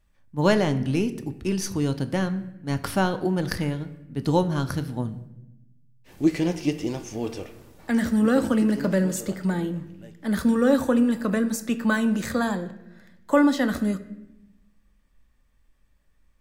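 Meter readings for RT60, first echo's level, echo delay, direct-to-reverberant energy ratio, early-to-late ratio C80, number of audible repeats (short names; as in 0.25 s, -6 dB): 0.90 s, none, none, 9.0 dB, 16.0 dB, none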